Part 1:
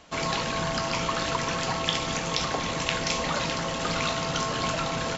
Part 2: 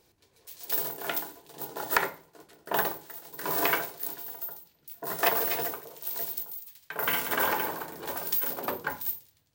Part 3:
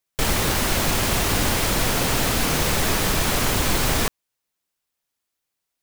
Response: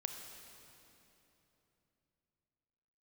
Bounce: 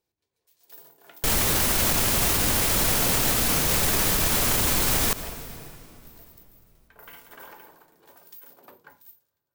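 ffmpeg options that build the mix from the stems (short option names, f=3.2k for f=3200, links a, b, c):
-filter_complex "[1:a]volume=-19dB,asplit=2[a][b];[b]volume=-20dB[c];[2:a]highshelf=f=7.3k:g=9.5,adelay=1050,volume=1dB,asplit=2[d][e];[e]volume=-10dB[f];[3:a]atrim=start_sample=2205[g];[c][f]amix=inputs=2:normalize=0[h];[h][g]afir=irnorm=-1:irlink=0[i];[a][d][i]amix=inputs=3:normalize=0,alimiter=limit=-12.5dB:level=0:latency=1:release=68"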